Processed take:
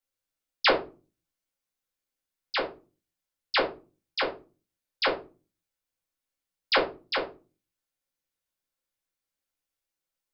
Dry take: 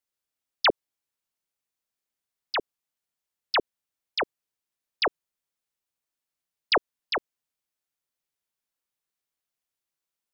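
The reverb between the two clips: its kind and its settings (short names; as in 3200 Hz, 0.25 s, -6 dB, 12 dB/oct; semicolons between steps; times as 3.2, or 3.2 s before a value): shoebox room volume 140 m³, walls furnished, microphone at 2.2 m; gain -5 dB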